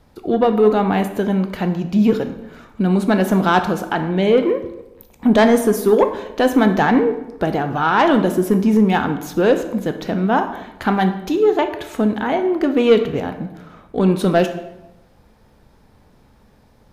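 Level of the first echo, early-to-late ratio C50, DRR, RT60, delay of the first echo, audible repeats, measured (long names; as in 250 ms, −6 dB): no echo audible, 10.0 dB, 7.0 dB, 0.95 s, no echo audible, no echo audible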